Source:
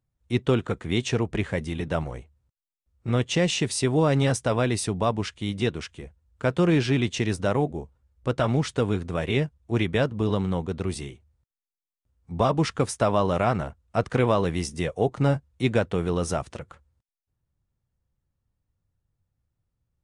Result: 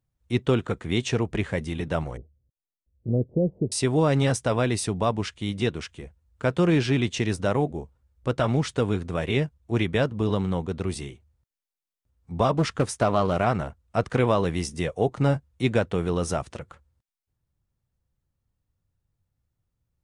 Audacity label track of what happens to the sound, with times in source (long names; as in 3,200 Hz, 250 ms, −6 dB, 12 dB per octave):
2.170000	3.720000	Butterworth low-pass 600 Hz
12.550000	13.460000	highs frequency-modulated by the lows depth 0.41 ms